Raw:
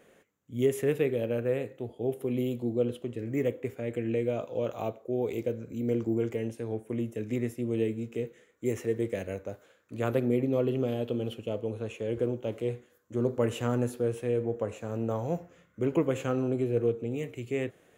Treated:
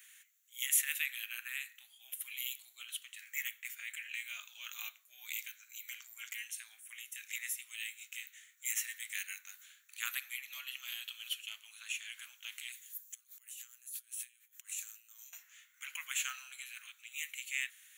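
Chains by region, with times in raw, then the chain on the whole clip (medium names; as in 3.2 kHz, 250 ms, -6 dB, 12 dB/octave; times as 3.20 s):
12.72–15.33 s: pre-emphasis filter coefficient 0.9 + compressor with a negative ratio -57 dBFS
whole clip: inverse Chebyshev high-pass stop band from 500 Hz, stop band 60 dB; tilt EQ +4 dB/octave; band-stop 5 kHz, Q 7; trim +1.5 dB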